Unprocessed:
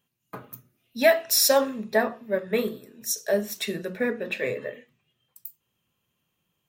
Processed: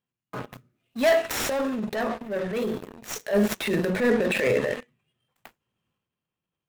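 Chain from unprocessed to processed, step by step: median filter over 9 samples; sample leveller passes 3; 1.09–3.33 compressor, threshold -21 dBFS, peak gain reduction 9.5 dB; transient shaper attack -7 dB, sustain +8 dB; gain -3.5 dB

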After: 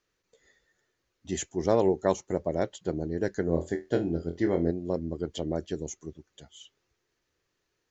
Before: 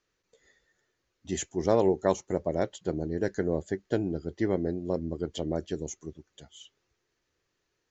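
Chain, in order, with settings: 3.45–4.71 flutter echo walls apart 4.1 m, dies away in 0.22 s

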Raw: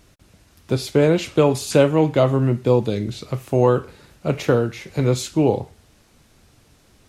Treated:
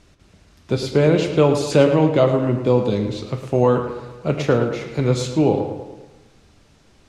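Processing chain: LPF 7200 Hz 12 dB/oct; tape echo 0.11 s, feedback 56%, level -8 dB, low-pass 3800 Hz; on a send at -10.5 dB: reverb RT60 0.70 s, pre-delay 5 ms

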